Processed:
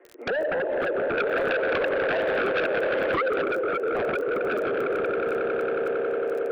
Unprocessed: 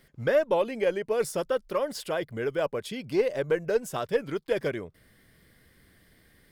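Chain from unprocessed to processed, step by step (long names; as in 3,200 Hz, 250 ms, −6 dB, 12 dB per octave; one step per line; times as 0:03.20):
running median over 15 samples
flanger swept by the level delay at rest 8.8 ms, full sweep at −21 dBFS
Butterworth high-pass 280 Hz 96 dB per octave
echo that builds up and dies away 91 ms, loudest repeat 8, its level −16.5 dB
comb and all-pass reverb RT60 2 s, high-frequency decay 0.65×, pre-delay 30 ms, DRR 4.5 dB
downward compressor 12 to 1, threshold −35 dBFS, peak gain reduction 16.5 dB
Butterworth low-pass 2,800 Hz 48 dB per octave
parametric band 440 Hz +10.5 dB 1.2 octaves
sine wavefolder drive 13 dB, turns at −16.5 dBFS
0:01.17–0:03.42: high-shelf EQ 2,100 Hz +11.5 dB
surface crackle 10 per second −27 dBFS
level −6 dB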